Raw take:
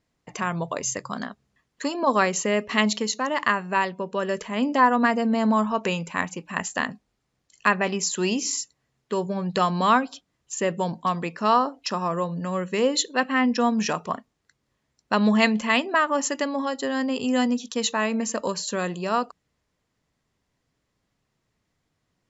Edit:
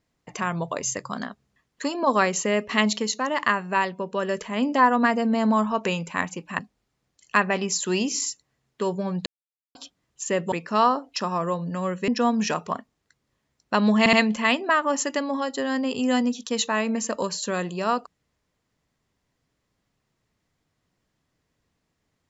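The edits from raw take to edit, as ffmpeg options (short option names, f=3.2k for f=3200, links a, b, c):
-filter_complex "[0:a]asplit=8[a][b][c][d][e][f][g][h];[a]atrim=end=6.592[i];[b]atrim=start=6.898:end=9.57,asetpts=PTS-STARTPTS,afade=t=out:st=2.668:d=0.004:c=hsin[j];[c]atrim=start=9.57:end=10.06,asetpts=PTS-STARTPTS,volume=0[k];[d]atrim=start=10.06:end=10.832,asetpts=PTS-STARTPTS,afade=t=in:d=0.004:c=hsin[l];[e]atrim=start=11.218:end=12.782[m];[f]atrim=start=13.468:end=15.452[n];[g]atrim=start=15.378:end=15.452[o];[h]atrim=start=15.378[p];[j][k][l]concat=n=3:v=0:a=1[q];[i][q]acrossfade=d=0.004:c1=hsin:c2=hsin[r];[r][m]acrossfade=d=0.004:c1=hsin:c2=hsin[s];[s][n]acrossfade=d=0.004:c1=hsin:c2=hsin[t];[t][o]acrossfade=d=0.004:c1=hsin:c2=hsin[u];[u][p]acrossfade=d=0.004:c1=hsin:c2=hsin"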